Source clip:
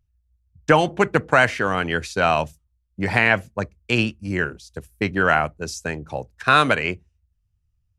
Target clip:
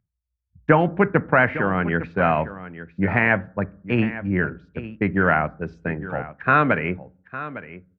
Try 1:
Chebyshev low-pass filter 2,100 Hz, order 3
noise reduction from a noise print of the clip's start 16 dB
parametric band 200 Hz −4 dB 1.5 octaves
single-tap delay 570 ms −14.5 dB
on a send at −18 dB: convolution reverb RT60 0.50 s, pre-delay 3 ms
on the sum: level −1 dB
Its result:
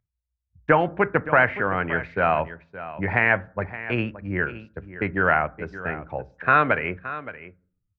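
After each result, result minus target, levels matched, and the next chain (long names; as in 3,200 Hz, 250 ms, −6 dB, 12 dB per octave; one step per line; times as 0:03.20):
echo 286 ms early; 250 Hz band −5.0 dB
Chebyshev low-pass filter 2,100 Hz, order 3
noise reduction from a noise print of the clip's start 16 dB
parametric band 200 Hz −4 dB 1.5 octaves
single-tap delay 856 ms −14.5 dB
on a send at −18 dB: convolution reverb RT60 0.50 s, pre-delay 3 ms
on the sum: level −1 dB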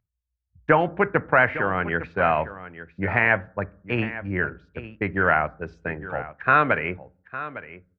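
250 Hz band −5.0 dB
Chebyshev low-pass filter 2,100 Hz, order 3
noise reduction from a noise print of the clip's start 16 dB
parametric band 200 Hz +4.5 dB 1.5 octaves
single-tap delay 856 ms −14.5 dB
on a send at −18 dB: convolution reverb RT60 0.50 s, pre-delay 3 ms
on the sum: level −1 dB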